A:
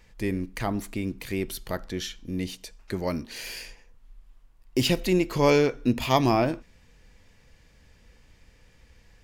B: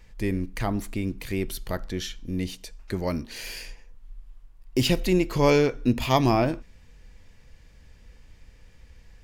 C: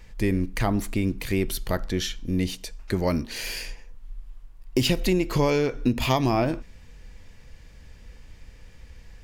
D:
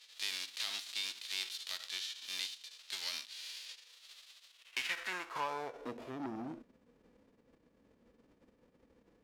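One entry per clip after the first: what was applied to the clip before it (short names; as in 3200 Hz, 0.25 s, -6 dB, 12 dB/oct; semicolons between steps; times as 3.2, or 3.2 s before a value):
low shelf 88 Hz +8 dB
compressor 10:1, threshold -22 dBFS, peak gain reduction 9 dB; gain +4.5 dB
spectral whitening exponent 0.3; band-pass sweep 3800 Hz -> 250 Hz, 4.48–6.36; core saturation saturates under 2000 Hz; gain -6.5 dB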